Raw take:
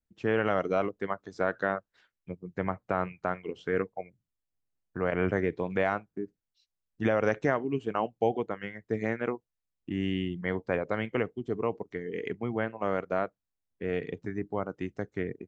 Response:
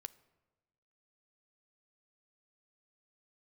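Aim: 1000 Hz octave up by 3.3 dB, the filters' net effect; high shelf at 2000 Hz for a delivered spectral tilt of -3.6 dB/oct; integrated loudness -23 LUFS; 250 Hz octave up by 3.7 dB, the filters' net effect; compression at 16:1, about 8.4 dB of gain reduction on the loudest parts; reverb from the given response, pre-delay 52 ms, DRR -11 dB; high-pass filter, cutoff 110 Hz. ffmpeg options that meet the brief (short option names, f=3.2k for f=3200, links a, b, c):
-filter_complex "[0:a]highpass=110,equalizer=f=250:t=o:g=5,equalizer=f=1k:t=o:g=6,highshelf=f=2k:g=-6,acompressor=threshold=-26dB:ratio=16,asplit=2[a][b];[1:a]atrim=start_sample=2205,adelay=52[c];[b][c]afir=irnorm=-1:irlink=0,volume=16dB[d];[a][d]amix=inputs=2:normalize=0"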